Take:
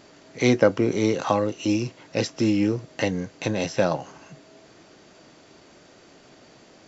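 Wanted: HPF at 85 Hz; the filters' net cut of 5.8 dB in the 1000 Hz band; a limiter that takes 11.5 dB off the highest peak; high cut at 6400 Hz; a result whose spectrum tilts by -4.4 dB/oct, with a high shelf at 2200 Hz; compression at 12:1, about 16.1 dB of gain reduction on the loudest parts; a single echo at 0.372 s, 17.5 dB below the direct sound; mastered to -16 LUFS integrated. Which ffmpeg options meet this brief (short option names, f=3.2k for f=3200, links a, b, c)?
-af "highpass=85,lowpass=6.4k,equalizer=f=1k:t=o:g=-9,highshelf=f=2.2k:g=5.5,acompressor=threshold=-30dB:ratio=12,alimiter=level_in=2dB:limit=-24dB:level=0:latency=1,volume=-2dB,aecho=1:1:372:0.133,volume=22dB"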